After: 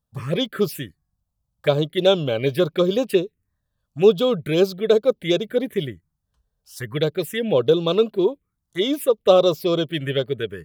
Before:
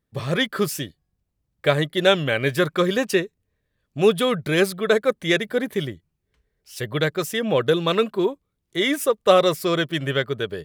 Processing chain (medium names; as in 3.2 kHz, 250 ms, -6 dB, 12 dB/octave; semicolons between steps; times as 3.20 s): touch-sensitive phaser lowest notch 350 Hz, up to 1.9 kHz, full sweep at -17 dBFS; dynamic bell 450 Hz, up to +4 dB, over -30 dBFS, Q 1.6